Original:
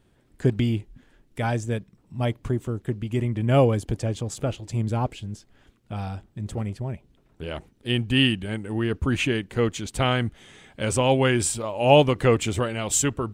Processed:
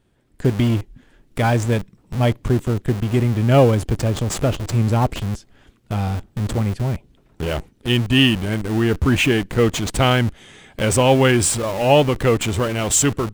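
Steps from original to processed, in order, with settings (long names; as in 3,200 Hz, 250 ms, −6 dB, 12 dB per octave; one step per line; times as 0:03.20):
automatic gain control gain up to 7 dB
in parallel at −8 dB: comparator with hysteresis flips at −29.5 dBFS
on the sum: level −1 dB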